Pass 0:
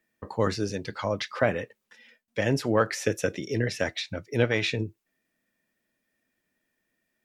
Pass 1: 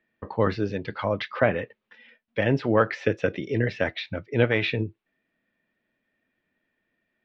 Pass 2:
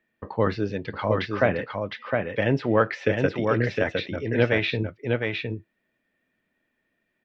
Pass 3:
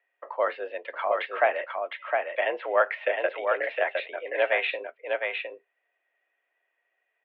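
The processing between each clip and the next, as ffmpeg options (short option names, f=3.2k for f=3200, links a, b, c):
-af "lowpass=f=3.5k:w=0.5412,lowpass=f=3.5k:w=1.3066,volume=2.5dB"
-af "aecho=1:1:710:0.631"
-af "highpass=f=450:t=q:w=0.5412,highpass=f=450:t=q:w=1.307,lowpass=f=3.1k:t=q:w=0.5176,lowpass=f=3.1k:t=q:w=0.7071,lowpass=f=3.1k:t=q:w=1.932,afreqshift=72"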